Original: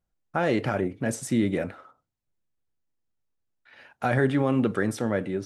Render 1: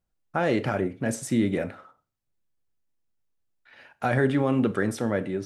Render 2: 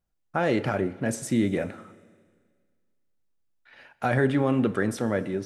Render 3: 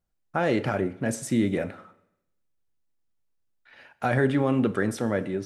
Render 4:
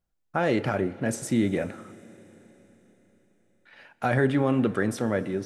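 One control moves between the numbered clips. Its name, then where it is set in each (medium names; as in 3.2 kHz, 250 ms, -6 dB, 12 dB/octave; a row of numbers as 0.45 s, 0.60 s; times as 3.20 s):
Schroeder reverb, RT60: 0.35 s, 1.8 s, 0.85 s, 4.4 s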